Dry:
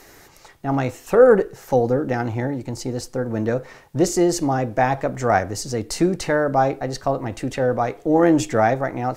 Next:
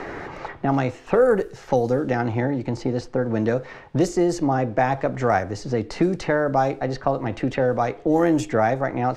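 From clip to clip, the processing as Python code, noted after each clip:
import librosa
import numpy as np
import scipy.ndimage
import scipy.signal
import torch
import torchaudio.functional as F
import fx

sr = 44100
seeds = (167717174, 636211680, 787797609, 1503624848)

y = fx.env_lowpass(x, sr, base_hz=1900.0, full_db=-12.0)
y = fx.band_squash(y, sr, depth_pct=70)
y = y * librosa.db_to_amplitude(-1.5)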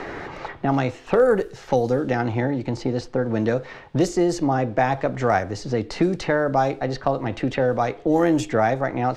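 y = np.clip(x, -10.0 ** (-7.5 / 20.0), 10.0 ** (-7.5 / 20.0))
y = fx.peak_eq(y, sr, hz=3600.0, db=4.0, octaves=0.95)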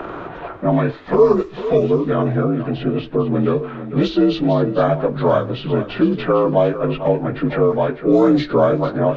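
y = fx.partial_stretch(x, sr, pct=83)
y = y + 10.0 ** (-12.0 / 20.0) * np.pad(y, (int(452 * sr / 1000.0), 0))[:len(y)]
y = y * librosa.db_to_amplitude(6.0)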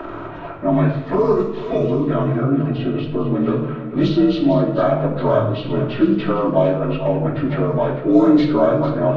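y = fx.room_shoebox(x, sr, seeds[0], volume_m3=2300.0, walls='furnished', distance_m=2.8)
y = y * librosa.db_to_amplitude(-4.0)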